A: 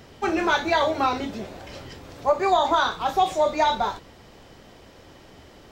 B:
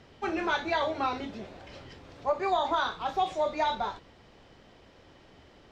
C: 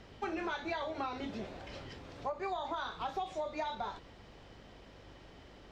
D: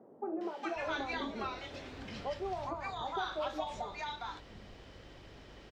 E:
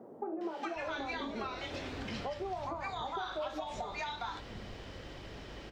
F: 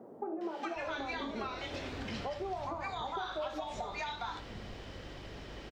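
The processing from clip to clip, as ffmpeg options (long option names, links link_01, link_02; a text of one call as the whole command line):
ffmpeg -i in.wav -af "lowpass=3500,aemphasis=mode=production:type=50kf,volume=-7.5dB" out.wav
ffmpeg -i in.wav -af "acompressor=threshold=-34dB:ratio=10,aeval=exprs='val(0)+0.001*(sin(2*PI*50*n/s)+sin(2*PI*2*50*n/s)/2+sin(2*PI*3*50*n/s)/3+sin(2*PI*4*50*n/s)/4+sin(2*PI*5*50*n/s)/5)':channel_layout=same" out.wav
ffmpeg -i in.wav -filter_complex "[0:a]acrossover=split=200|860[link_01][link_02][link_03];[link_03]adelay=410[link_04];[link_01]adelay=760[link_05];[link_05][link_02][link_04]amix=inputs=3:normalize=0,volume=2.5dB" out.wav
ffmpeg -i in.wav -af "acompressor=threshold=-42dB:ratio=6,flanger=delay=8.3:depth=9.7:regen=82:speed=0.44:shape=sinusoidal,volume=11dB" out.wav
ffmpeg -i in.wav -af "aecho=1:1:80:0.178" out.wav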